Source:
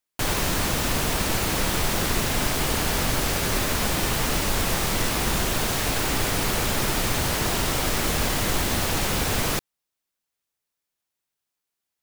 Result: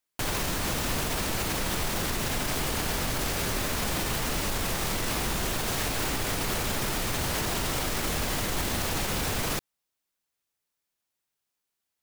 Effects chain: limiter -19.5 dBFS, peak gain reduction 8.5 dB

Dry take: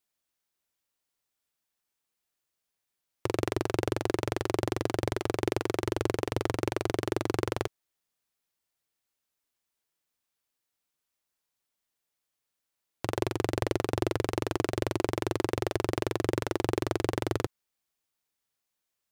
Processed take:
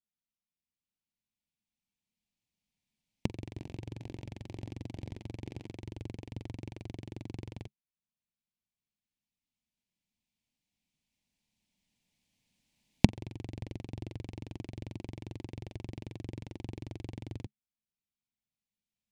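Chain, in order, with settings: 3.32–5.74 reverse delay 0.234 s, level -13 dB; recorder AGC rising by 5.3 dB/s; EQ curve 140 Hz 0 dB, 210 Hz +6 dB, 390 Hz -15 dB, 920 Hz -13 dB, 1300 Hz -27 dB, 2300 Hz -7 dB, 7200 Hz -13 dB, 15000 Hz -24 dB; gain -7 dB

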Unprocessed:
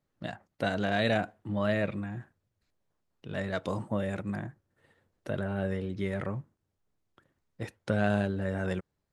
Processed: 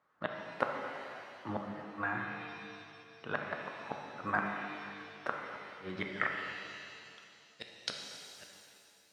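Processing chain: low shelf 76 Hz +3.5 dB; flipped gate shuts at -22 dBFS, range -34 dB; band-pass sweep 1200 Hz -> 4500 Hz, 5.78–7.12; shimmer reverb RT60 2.4 s, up +7 st, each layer -8 dB, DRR 1.5 dB; gain +17 dB

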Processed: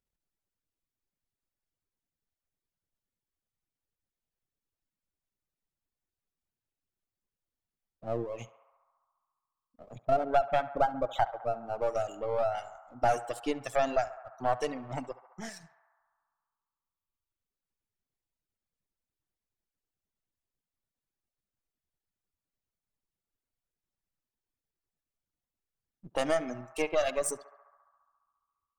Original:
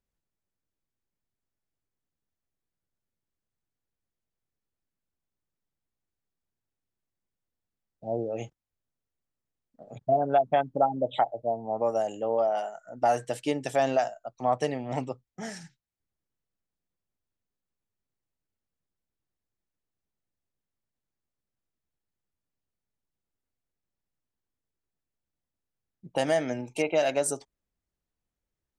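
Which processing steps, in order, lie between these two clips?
half-wave gain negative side -7 dB; reverb removal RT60 1.9 s; narrowing echo 69 ms, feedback 83%, band-pass 1100 Hz, level -15 dB

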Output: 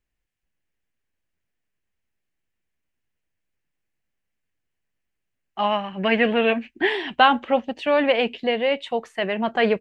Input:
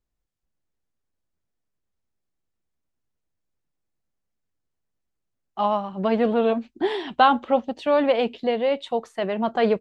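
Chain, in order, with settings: band shelf 2200 Hz +9 dB 1.1 oct, from 5.65 s +15.5 dB, from 6.89 s +8 dB

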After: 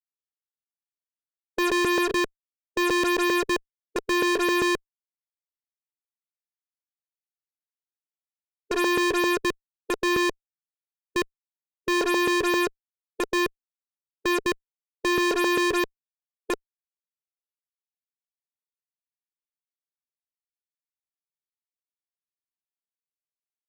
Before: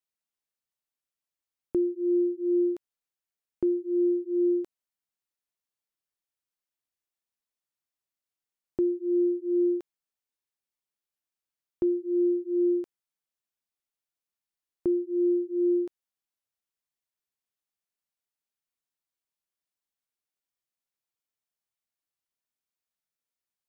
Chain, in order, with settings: slices in reverse order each 0.132 s, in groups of 6; fuzz box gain 46 dB, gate -51 dBFS; formant shift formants +3 st; gain -8.5 dB

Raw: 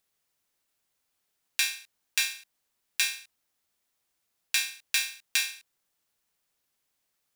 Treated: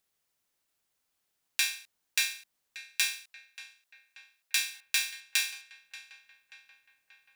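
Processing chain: 3.13–4.86 HPF 730 Hz 6 dB/oct; darkening echo 0.583 s, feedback 66%, low-pass 2700 Hz, level -14 dB; gain -1.5 dB

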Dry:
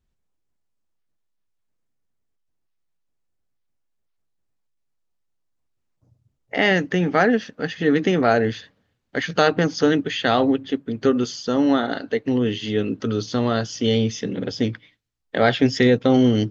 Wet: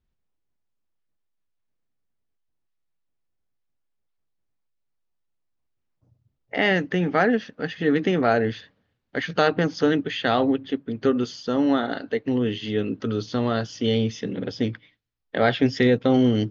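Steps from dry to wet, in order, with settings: LPF 4800 Hz 12 dB/oct; gain -2.5 dB

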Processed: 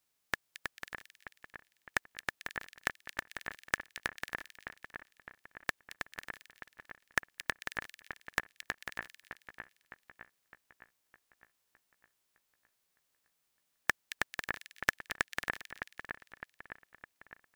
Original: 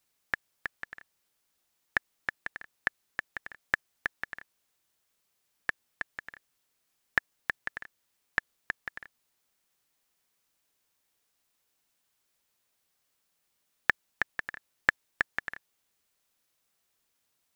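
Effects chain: spectral whitening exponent 0.6; split-band echo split 2400 Hz, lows 0.61 s, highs 0.222 s, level -8.5 dB; overloaded stage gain 8.5 dB; gain -3.5 dB

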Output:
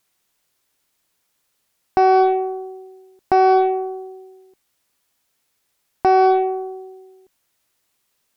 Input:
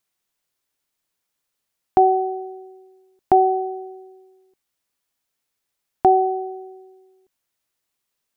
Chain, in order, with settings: limiter -17 dBFS, peak gain reduction 11.5 dB; added harmonics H 2 -15 dB, 4 -27 dB, 8 -30 dB, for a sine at -17 dBFS; gain +9 dB

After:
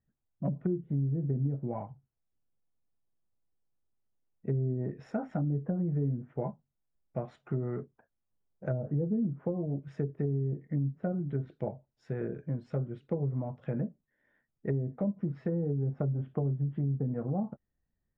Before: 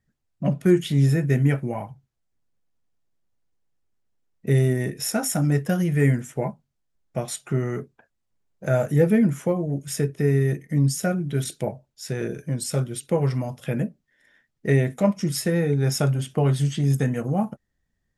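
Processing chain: LPF 1300 Hz 12 dB/oct; treble ducked by the level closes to 380 Hz, closed at -17 dBFS; compressor, threshold -20 dBFS, peak gain reduction 7 dB; gain -6.5 dB

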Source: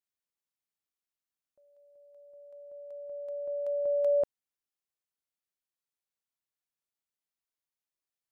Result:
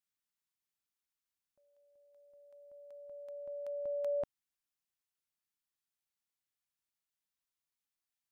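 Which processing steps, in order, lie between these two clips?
bell 490 Hz -11 dB 0.97 oct

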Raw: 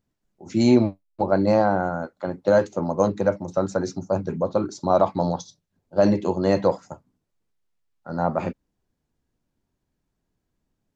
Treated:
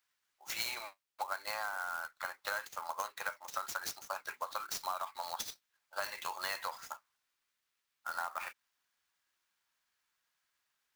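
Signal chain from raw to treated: HPF 1200 Hz 24 dB/oct; compressor 12:1, threshold -41 dBFS, peak gain reduction 15 dB; clock jitter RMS 0.024 ms; gain +7 dB

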